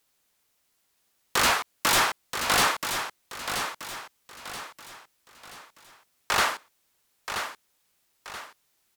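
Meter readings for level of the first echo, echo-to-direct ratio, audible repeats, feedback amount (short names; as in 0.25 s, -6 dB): -8.0 dB, -7.5 dB, 4, 39%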